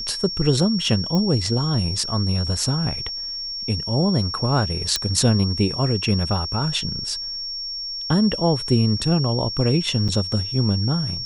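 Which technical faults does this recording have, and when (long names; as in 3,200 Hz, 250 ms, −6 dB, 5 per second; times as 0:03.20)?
whistle 5,500 Hz −27 dBFS
0:01.15: click −12 dBFS
0:04.96: click −5 dBFS
0:10.08–0:10.09: drop-out 6.1 ms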